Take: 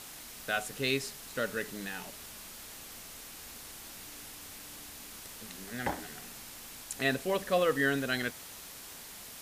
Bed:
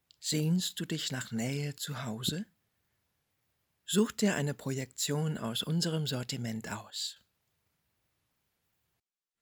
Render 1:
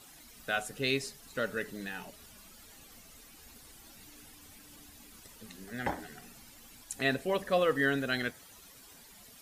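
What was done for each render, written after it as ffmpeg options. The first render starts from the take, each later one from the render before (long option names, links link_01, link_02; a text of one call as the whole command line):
ffmpeg -i in.wav -af "afftdn=noise_reduction=12:noise_floor=-48" out.wav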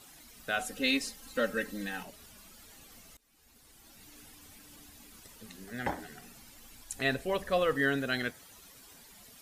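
ffmpeg -i in.wav -filter_complex "[0:a]asettb=1/sr,asplit=3[link_01][link_02][link_03];[link_01]atrim=end=0.594[link_04];[link_02]atrim=start=0.59:end=2.03,asetpts=PTS-STARTPTS,afade=type=in:duration=0.004:curve=qsin,afade=type=out:start_time=1.436:duration=0.004:curve=qsin,aecho=1:1:3.8:0.95,atrim=end_sample=63504[link_05];[link_03]atrim=start=2.026[link_06];[link_04][link_05]acrossfade=duration=0.004:curve1=hsin:curve2=qsin[link_07];[link_07][link_06]acrossfade=duration=0.004:curve1=qsin:curve2=hsin,asettb=1/sr,asplit=3[link_08][link_09][link_10];[link_08]atrim=end=6.414[link_11];[link_09]atrim=start=6.41:end=7.74,asetpts=PTS-STARTPTS,afade=type=in:duration=0.004:curve=qsin,afade=type=out:start_time=1.326:duration=0.004:curve=qsin,asubboost=boost=9:cutoff=96[link_12];[link_10]atrim=start=7.736[link_13];[link_11][link_12]acrossfade=duration=0.004:curve1=hsin:curve2=qsin[link_14];[link_14][link_13]acrossfade=duration=0.004:curve1=qsin:curve2=hsin,asplit=2[link_15][link_16];[link_15]atrim=end=3.17,asetpts=PTS-STARTPTS,afade=type=out:start_time=3.166:duration=0.004:curve=hsin:silence=0.0707946[link_17];[link_16]atrim=start=3.17,asetpts=PTS-STARTPTS,afade=type=in:duration=1.01:silence=0.0707946[link_18];[link_17][link_18]concat=n=2:v=0:a=1" out.wav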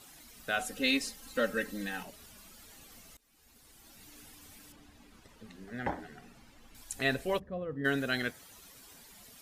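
ffmpeg -i in.wav -filter_complex "[0:a]asettb=1/sr,asplit=3[link_01][link_02][link_03];[link_01]atrim=end=4.724[link_04];[link_02]atrim=start=4.72:end=6.75,asetpts=PTS-STARTPTS,afade=type=in:duration=0.004:curve=qsin,afade=type=out:start_time=2.026:duration=0.004:curve=qsin,aemphasis=mode=reproduction:type=75kf[link_05];[link_03]atrim=start=6.746[link_06];[link_04][link_05]acrossfade=duration=0.004:curve1=hsin:curve2=qsin[link_07];[link_07][link_06]acrossfade=duration=0.004:curve1=qsin:curve2=hsin,asplit=3[link_08][link_09][link_10];[link_08]afade=type=out:start_time=7.38:duration=0.02[link_11];[link_09]bandpass=frequency=140:width_type=q:width=0.91,afade=type=in:start_time=7.38:duration=0.02,afade=type=out:start_time=7.84:duration=0.02[link_12];[link_10]afade=type=in:start_time=7.84:duration=0.02[link_13];[link_11][link_12][link_13]amix=inputs=3:normalize=0" out.wav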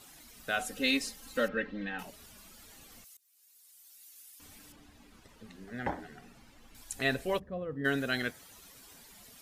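ffmpeg -i in.wav -filter_complex "[0:a]asettb=1/sr,asplit=3[link_01][link_02][link_03];[link_01]atrim=end=1.484[link_04];[link_02]atrim=start=1.48:end=1.99,asetpts=PTS-STARTPTS,afade=type=in:duration=0.004:curve=qsin,afade=type=out:start_time=0.506:duration=0.004:curve=qsin,lowpass=frequency=3300:width=0.5412,lowpass=frequency=3300:width=1.3066[link_05];[link_03]atrim=start=1.986[link_06];[link_04][link_05]acrossfade=duration=0.004:curve1=hsin:curve2=qsin[link_07];[link_07][link_06]acrossfade=duration=0.004:curve1=qsin:curve2=hsin,asettb=1/sr,asplit=3[link_08][link_09][link_10];[link_08]atrim=end=3.044[link_11];[link_09]atrim=start=3.04:end=4.4,asetpts=PTS-STARTPTS,afade=type=in:duration=0.004:curve=qsin,afade=type=out:start_time=1.356:duration=0.004:curve=qsin,aderivative[link_12];[link_10]atrim=start=4.396[link_13];[link_11][link_12]acrossfade=duration=0.004:curve1=hsin:curve2=qsin[link_14];[link_14][link_13]acrossfade=duration=0.004:curve1=qsin:curve2=hsin" out.wav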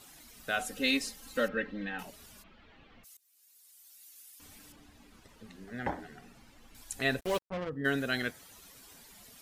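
ffmpeg -i in.wav -filter_complex "[0:a]asplit=3[link_01][link_02][link_03];[link_01]afade=type=out:start_time=2.42:duration=0.02[link_04];[link_02]lowpass=frequency=3100:width=0.5412,lowpass=frequency=3100:width=1.3066,afade=type=in:start_time=2.42:duration=0.02,afade=type=out:start_time=3.03:duration=0.02[link_05];[link_03]afade=type=in:start_time=3.03:duration=0.02[link_06];[link_04][link_05][link_06]amix=inputs=3:normalize=0,asplit=3[link_07][link_08][link_09];[link_07]afade=type=out:start_time=7.19:duration=0.02[link_10];[link_08]acrusher=bits=5:mix=0:aa=0.5,afade=type=in:start_time=7.19:duration=0.02,afade=type=out:start_time=7.68:duration=0.02[link_11];[link_09]afade=type=in:start_time=7.68:duration=0.02[link_12];[link_10][link_11][link_12]amix=inputs=3:normalize=0" out.wav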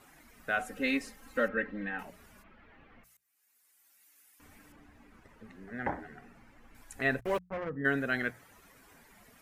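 ffmpeg -i in.wav -af "highshelf=frequency=2700:width_type=q:width=1.5:gain=-9,bandreject=frequency=60:width_type=h:width=6,bandreject=frequency=120:width_type=h:width=6,bandreject=frequency=180:width_type=h:width=6" out.wav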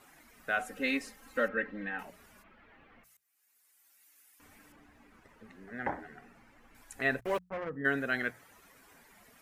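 ffmpeg -i in.wav -af "lowshelf=frequency=210:gain=-6" out.wav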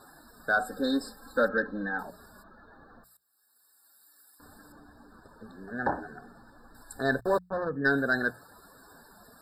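ffmpeg -i in.wav -af "aeval=exprs='0.178*sin(PI/2*1.41*val(0)/0.178)':channel_layout=same,afftfilt=real='re*eq(mod(floor(b*sr/1024/1800),2),0)':imag='im*eq(mod(floor(b*sr/1024/1800),2),0)':win_size=1024:overlap=0.75" out.wav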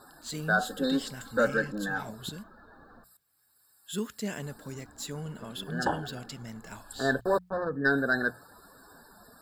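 ffmpeg -i in.wav -i bed.wav -filter_complex "[1:a]volume=-6dB[link_01];[0:a][link_01]amix=inputs=2:normalize=0" out.wav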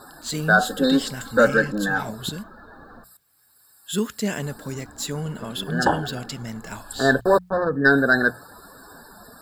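ffmpeg -i in.wav -af "volume=9dB" out.wav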